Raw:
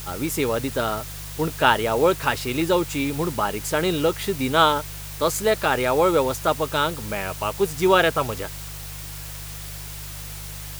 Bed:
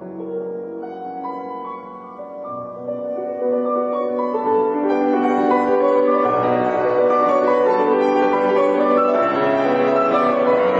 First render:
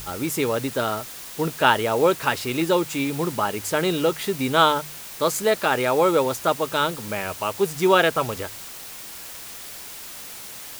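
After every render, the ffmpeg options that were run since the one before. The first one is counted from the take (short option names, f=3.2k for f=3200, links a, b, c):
-af "bandreject=f=50:t=h:w=4,bandreject=f=100:t=h:w=4,bandreject=f=150:t=h:w=4"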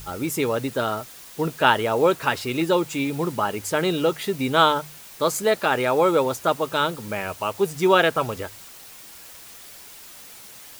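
-af "afftdn=nr=6:nf=-38"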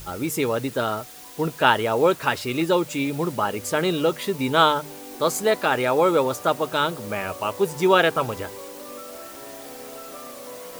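-filter_complex "[1:a]volume=-23.5dB[a];[0:a][a]amix=inputs=2:normalize=0"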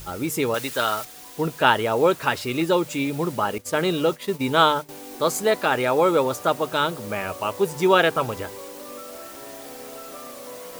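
-filter_complex "[0:a]asettb=1/sr,asplit=3[a][b][c];[a]atrim=end=0.544[d];[b]atrim=start=0.54:end=1.05,asetpts=PTS-STARTPTS,afade=t=in:d=0.004:c=qsin,afade=t=out:st=0.506:d=0.004:c=qsin,tiltshelf=f=710:g=-7.5[e];[c]atrim=start=1.046[f];[d][e]acrossfade=d=0.004:c1=hsin:c2=qsin[g];[g][f]acrossfade=d=0.004:c1=qsin:c2=hsin,asettb=1/sr,asplit=3[h][i][j];[h]atrim=end=3.584[k];[i]atrim=start=3.58:end=4.89,asetpts=PTS-STARTPTS,afade=t=in:d=0.004:c=qsin,afade=t=out:st=1.306:d=0.004:c=qsin,agate=range=-33dB:threshold=-28dB:ratio=3:release=100:detection=peak[l];[j]atrim=start=4.886[m];[k][l]acrossfade=d=0.004:c1=hsin:c2=qsin[n];[n][m]acrossfade=d=0.004:c1=qsin:c2=hsin"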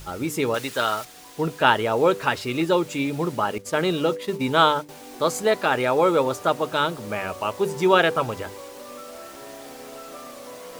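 -af "highshelf=f=11k:g=-9.5,bandreject=f=98.41:t=h:w=4,bandreject=f=196.82:t=h:w=4,bandreject=f=295.23:t=h:w=4,bandreject=f=393.64:t=h:w=4,bandreject=f=492.05:t=h:w=4"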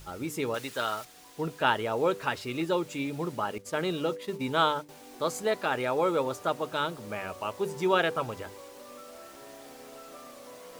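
-af "volume=-7.5dB"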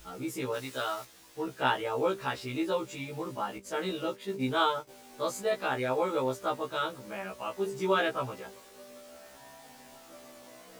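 -af "afftfilt=real='re*1.73*eq(mod(b,3),0)':imag='im*1.73*eq(mod(b,3),0)':win_size=2048:overlap=0.75"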